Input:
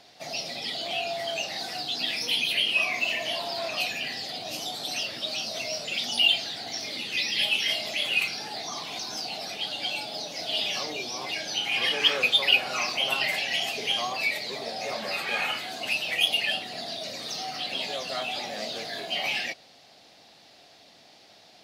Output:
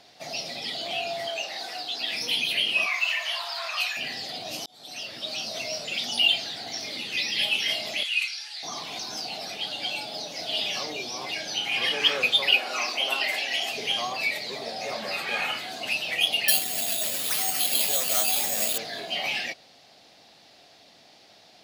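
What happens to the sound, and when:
0:01.28–0:02.12: bass and treble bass −15 dB, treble −3 dB
0:02.86–0:03.97: high-pass with resonance 1,200 Hz, resonance Q 2.4
0:04.66–0:05.64: fade in equal-power
0:08.03–0:08.63: flat-topped band-pass 4,900 Hz, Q 0.56
0:12.51–0:13.71: high-pass filter 240 Hz 24 dB per octave
0:16.48–0:18.78: bad sample-rate conversion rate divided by 6×, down none, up zero stuff

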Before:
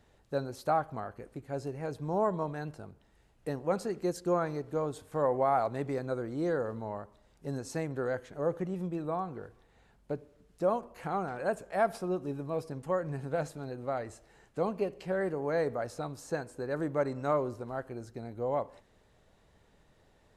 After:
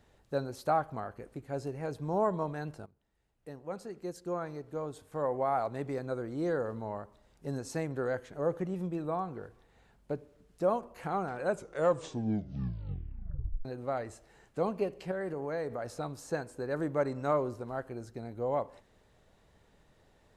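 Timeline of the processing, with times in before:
0:02.86–0:06.90: fade in, from −15.5 dB
0:11.39: tape stop 2.26 s
0:15.11–0:15.88: downward compressor 3 to 1, threshold −33 dBFS

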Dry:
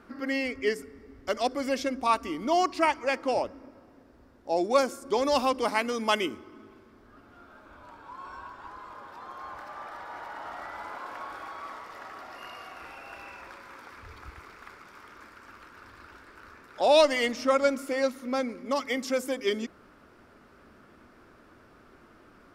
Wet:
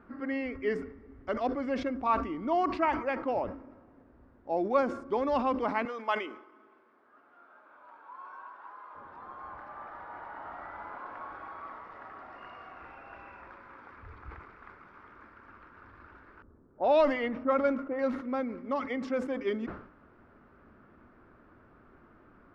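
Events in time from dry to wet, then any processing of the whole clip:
0:05.85–0:08.95: high-pass filter 540 Hz
0:16.42–0:17.99: low-pass that shuts in the quiet parts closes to 360 Hz, open at −17.5 dBFS
whole clip: low-pass filter 1,500 Hz 12 dB per octave; parametric band 520 Hz −4 dB 2 octaves; level that may fall only so fast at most 92 dB per second

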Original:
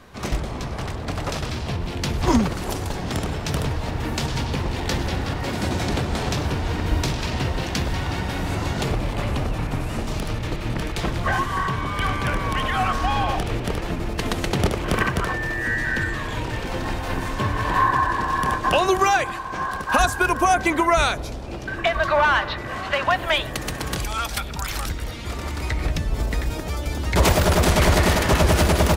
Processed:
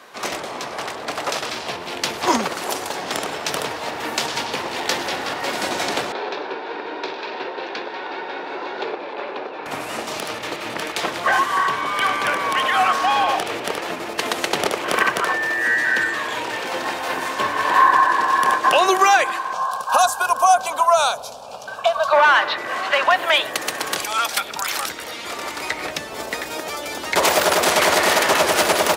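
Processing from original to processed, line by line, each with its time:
0:06.12–0:09.66: loudspeaker in its box 380–3,400 Hz, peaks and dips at 390 Hz +6 dB, 670 Hz −6 dB, 1,200 Hz −7 dB, 2,000 Hz −8 dB, 3,000 Hz −10 dB
0:19.53–0:22.13: phaser with its sweep stopped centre 810 Hz, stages 4
whole clip: high-pass filter 480 Hz 12 dB per octave; boost into a limiter +10 dB; level −4 dB

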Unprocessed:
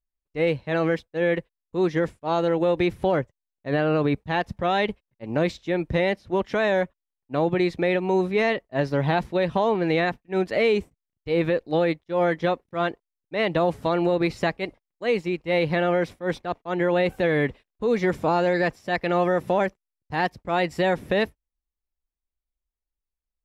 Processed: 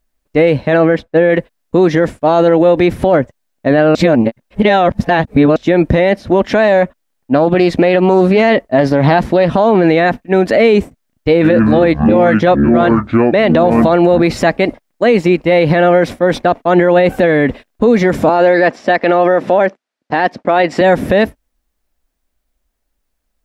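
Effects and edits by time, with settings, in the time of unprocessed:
0:00.77–0:01.30: high-shelf EQ 4,200 Hz −12 dB
0:03.95–0:05.56: reverse
0:06.47–0:09.71: highs frequency-modulated by the lows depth 0.18 ms
0:11.29–0:14.20: delay with pitch and tempo change per echo 139 ms, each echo −7 semitones, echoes 2, each echo −6 dB
0:18.29–0:20.81: band-pass filter 240–5,000 Hz
whole clip: graphic EQ with 15 bands 250 Hz +9 dB, 630 Hz +7 dB, 1,600 Hz +4 dB; downward compressor, threshold −18 dBFS; boost into a limiter +19 dB; level −1 dB

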